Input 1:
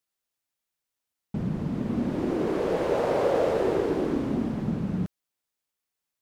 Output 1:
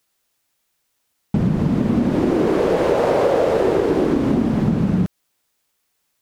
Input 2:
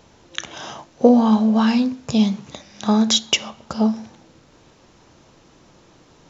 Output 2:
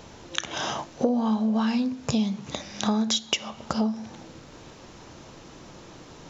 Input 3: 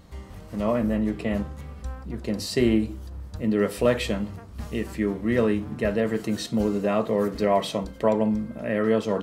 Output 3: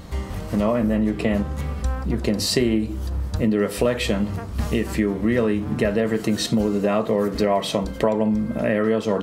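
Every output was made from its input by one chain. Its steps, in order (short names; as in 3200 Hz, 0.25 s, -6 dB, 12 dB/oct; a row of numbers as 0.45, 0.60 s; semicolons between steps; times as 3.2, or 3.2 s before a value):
compressor 4:1, threshold -30 dBFS; normalise peaks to -6 dBFS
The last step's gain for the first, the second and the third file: +15.0, +5.5, +12.0 dB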